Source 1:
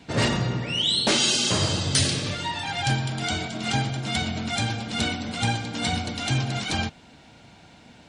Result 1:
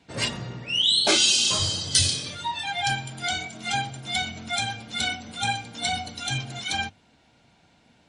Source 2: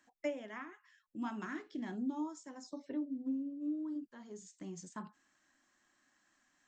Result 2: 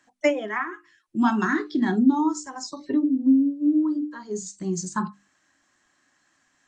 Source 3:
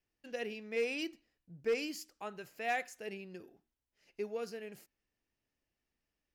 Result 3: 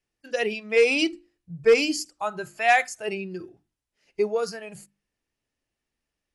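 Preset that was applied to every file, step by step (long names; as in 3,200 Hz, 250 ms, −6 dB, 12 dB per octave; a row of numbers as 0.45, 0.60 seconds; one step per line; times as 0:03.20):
noise reduction from a noise print of the clip's start 12 dB
mains-hum notches 50/100/150/200/250/300/350 Hz
AC-3 64 kbit/s 44,100 Hz
loudness normalisation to −24 LKFS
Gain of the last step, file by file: +2.5, +19.5, +15.5 decibels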